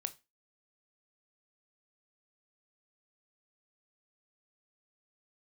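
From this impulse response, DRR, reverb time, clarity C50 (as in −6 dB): 10.5 dB, 0.25 s, 19.5 dB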